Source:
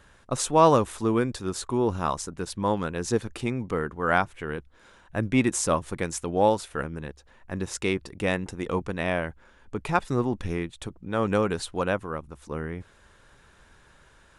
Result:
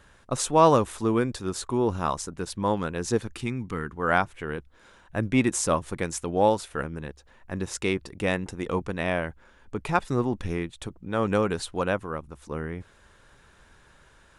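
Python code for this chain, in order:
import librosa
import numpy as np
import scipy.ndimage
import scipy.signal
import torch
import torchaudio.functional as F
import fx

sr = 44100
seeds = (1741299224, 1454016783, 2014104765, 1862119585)

y = fx.peak_eq(x, sr, hz=590.0, db=-12.0, octaves=1.0, at=(3.28, 3.97))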